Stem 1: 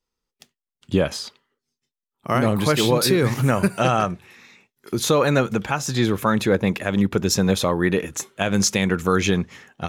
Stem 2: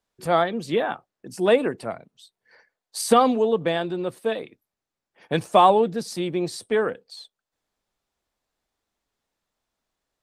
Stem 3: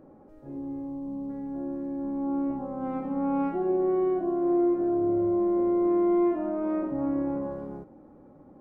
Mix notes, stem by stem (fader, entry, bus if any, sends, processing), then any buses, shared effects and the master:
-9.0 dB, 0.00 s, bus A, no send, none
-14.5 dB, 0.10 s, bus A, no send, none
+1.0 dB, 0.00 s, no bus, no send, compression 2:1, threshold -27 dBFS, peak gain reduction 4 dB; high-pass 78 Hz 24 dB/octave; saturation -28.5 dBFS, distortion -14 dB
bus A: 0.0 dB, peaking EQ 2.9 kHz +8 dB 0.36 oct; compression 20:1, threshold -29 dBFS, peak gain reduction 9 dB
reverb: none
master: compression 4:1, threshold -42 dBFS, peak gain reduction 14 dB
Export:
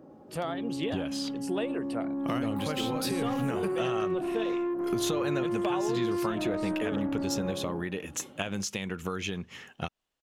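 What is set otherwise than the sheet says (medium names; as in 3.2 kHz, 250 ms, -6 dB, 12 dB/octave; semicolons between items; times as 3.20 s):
stem 1 -9.0 dB -> -2.0 dB; stem 2 -14.5 dB -> -4.0 dB; master: missing compression 4:1, threshold -42 dBFS, peak gain reduction 14 dB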